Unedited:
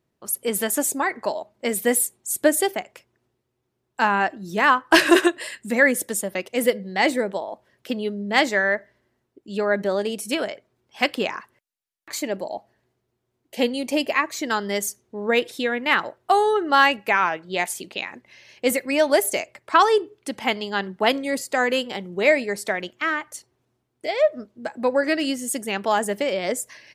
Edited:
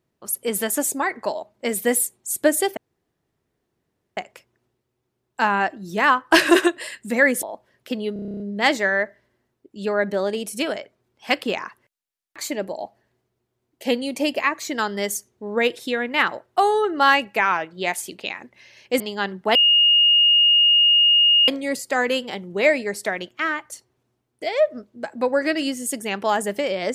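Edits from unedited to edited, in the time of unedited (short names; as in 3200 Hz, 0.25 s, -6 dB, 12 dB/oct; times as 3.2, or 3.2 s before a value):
2.77 insert room tone 1.40 s
6.03–7.42 cut
8.12 stutter 0.03 s, 10 plays
18.72–20.55 cut
21.1 add tone 2850 Hz -12 dBFS 1.93 s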